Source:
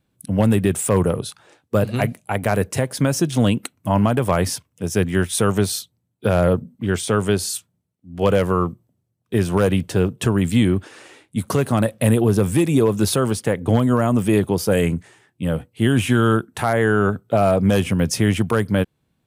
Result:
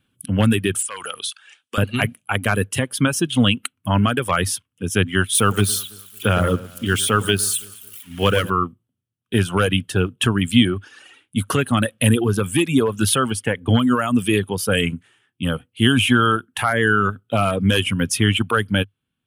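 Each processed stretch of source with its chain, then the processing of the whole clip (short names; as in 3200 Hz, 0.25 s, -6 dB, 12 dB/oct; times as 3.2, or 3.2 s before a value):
0.82–1.78 weighting filter ITU-R 468 + compressor 8:1, threshold -25 dBFS
5.35–8.5 switching spikes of -24 dBFS + de-esser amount 25% + echo with dull and thin repeats by turns 0.111 s, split 1800 Hz, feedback 60%, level -8 dB
whole clip: band shelf 2000 Hz +9.5 dB; reverb removal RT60 1.7 s; thirty-one-band EQ 100 Hz +5 dB, 250 Hz +6 dB, 630 Hz -4 dB, 2000 Hz -6 dB, 3150 Hz +6 dB, 10000 Hz +9 dB; gain -1.5 dB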